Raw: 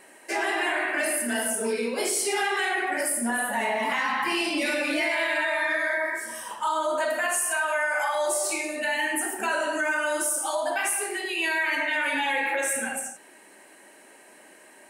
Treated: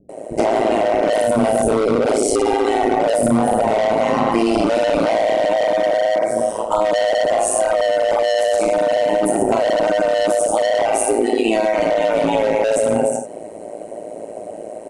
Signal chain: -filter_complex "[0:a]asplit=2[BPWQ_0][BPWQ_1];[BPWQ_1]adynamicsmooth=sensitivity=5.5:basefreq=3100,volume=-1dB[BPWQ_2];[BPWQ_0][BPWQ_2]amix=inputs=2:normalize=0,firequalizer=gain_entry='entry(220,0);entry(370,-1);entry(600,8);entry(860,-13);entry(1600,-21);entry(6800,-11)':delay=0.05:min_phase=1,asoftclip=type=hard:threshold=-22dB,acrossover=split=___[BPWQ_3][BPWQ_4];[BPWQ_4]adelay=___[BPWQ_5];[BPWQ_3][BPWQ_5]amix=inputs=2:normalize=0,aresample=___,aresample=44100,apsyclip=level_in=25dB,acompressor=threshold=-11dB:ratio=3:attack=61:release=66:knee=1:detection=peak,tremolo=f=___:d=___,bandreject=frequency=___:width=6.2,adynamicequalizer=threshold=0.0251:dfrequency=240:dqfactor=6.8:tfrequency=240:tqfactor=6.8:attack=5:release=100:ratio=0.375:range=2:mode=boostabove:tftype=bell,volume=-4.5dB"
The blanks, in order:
210, 90, 22050, 110, 0.889, 1700